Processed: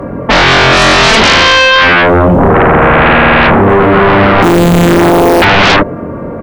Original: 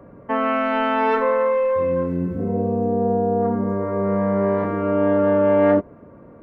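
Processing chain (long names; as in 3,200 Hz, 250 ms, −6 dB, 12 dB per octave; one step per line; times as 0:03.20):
0:04.42–0:05.42: samples sorted by size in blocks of 256 samples
double-tracking delay 23 ms −5 dB
sine wavefolder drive 17 dB, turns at −5.5 dBFS
level +3 dB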